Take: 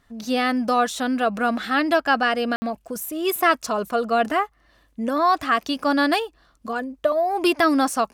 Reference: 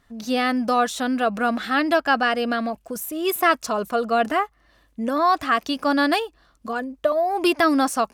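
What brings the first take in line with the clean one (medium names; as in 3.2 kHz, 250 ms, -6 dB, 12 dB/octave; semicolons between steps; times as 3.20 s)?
room tone fill 2.56–2.62 s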